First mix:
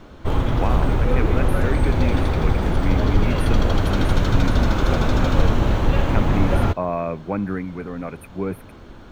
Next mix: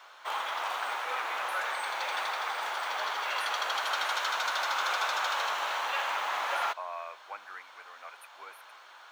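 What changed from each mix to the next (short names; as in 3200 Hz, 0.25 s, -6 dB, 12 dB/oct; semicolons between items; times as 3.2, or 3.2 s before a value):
speech -8.0 dB; master: add HPF 850 Hz 24 dB/oct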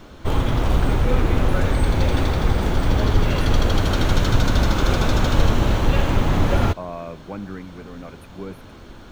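background: add high shelf 3200 Hz +7.5 dB; master: remove HPF 850 Hz 24 dB/oct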